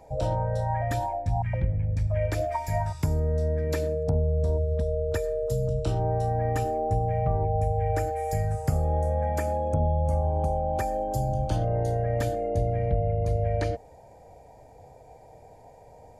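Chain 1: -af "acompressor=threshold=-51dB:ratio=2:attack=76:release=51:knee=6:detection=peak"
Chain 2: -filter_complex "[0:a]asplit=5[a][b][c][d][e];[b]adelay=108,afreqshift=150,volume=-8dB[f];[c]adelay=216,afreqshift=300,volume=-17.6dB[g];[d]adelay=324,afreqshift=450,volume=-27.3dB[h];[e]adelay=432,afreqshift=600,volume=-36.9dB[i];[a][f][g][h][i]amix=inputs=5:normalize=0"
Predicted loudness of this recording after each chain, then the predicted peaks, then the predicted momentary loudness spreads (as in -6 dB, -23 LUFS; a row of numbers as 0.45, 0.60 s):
-38.5, -26.5 LUFS; -23.0, -12.0 dBFS; 14, 3 LU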